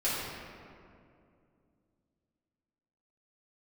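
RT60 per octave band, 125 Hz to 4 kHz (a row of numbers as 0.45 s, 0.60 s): 3.3 s, 3.3 s, 2.7 s, 2.2 s, 1.8 s, 1.2 s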